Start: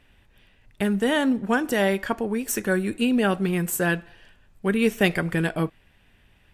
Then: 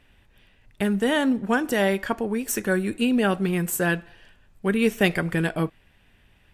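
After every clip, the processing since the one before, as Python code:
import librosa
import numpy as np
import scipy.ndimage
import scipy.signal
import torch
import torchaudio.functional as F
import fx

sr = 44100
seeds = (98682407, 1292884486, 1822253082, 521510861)

y = x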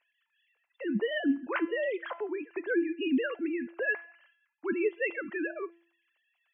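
y = fx.sine_speech(x, sr)
y = fx.comb_fb(y, sr, f0_hz=340.0, decay_s=0.51, harmonics='all', damping=0.0, mix_pct=70)
y = F.gain(torch.from_numpy(y), 1.0).numpy()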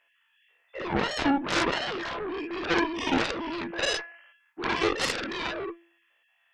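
y = fx.spec_dilate(x, sr, span_ms=120)
y = fx.cheby_harmonics(y, sr, harmonics=(4, 7), levels_db=(-17, -8), full_scale_db=-13.5)
y = F.gain(torch.from_numpy(y), -3.0).numpy()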